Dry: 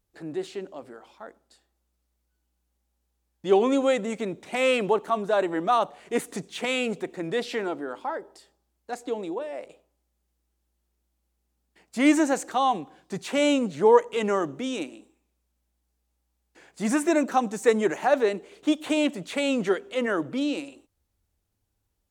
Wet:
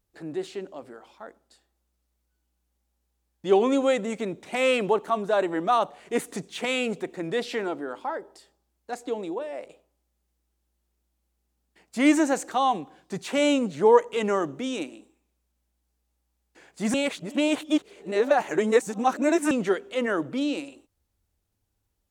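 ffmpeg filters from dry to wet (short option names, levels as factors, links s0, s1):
-filter_complex "[0:a]asplit=3[s0][s1][s2];[s0]atrim=end=16.942[s3];[s1]atrim=start=16.938:end=19.512,asetpts=PTS-STARTPTS,areverse[s4];[s2]atrim=start=19.508[s5];[s3][s4]acrossfade=d=0.004:c1=hsin:c2=hsin[s6];[s6][s5]acrossfade=d=0.004:c1=hsin:c2=hsin"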